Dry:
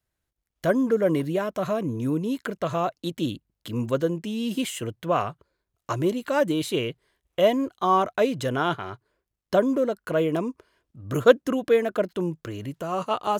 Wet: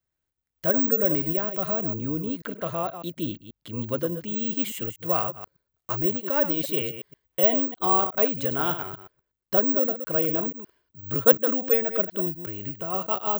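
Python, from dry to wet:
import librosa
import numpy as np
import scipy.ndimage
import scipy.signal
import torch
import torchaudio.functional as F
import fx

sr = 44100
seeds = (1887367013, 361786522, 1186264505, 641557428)

y = fx.reverse_delay(x, sr, ms=121, wet_db=-9.5)
y = (np.kron(scipy.signal.resample_poly(y, 1, 2), np.eye(2)[0]) * 2)[:len(y)]
y = fx.high_shelf(y, sr, hz=9700.0, db=-9.0, at=(1.94, 4.28))
y = y * librosa.db_to_amplitude(-4.0)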